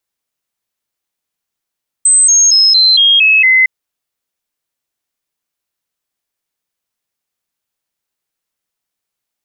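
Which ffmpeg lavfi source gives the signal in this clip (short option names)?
-f lavfi -i "aevalsrc='0.562*clip(min(mod(t,0.23),0.23-mod(t,0.23))/0.005,0,1)*sin(2*PI*8190*pow(2,-floor(t/0.23)/3)*mod(t,0.23))':d=1.61:s=44100"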